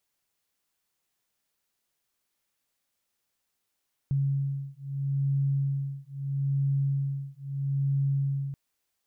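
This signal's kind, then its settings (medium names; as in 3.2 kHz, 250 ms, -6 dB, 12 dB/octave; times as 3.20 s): beating tones 138 Hz, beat 0.77 Hz, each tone -28.5 dBFS 4.43 s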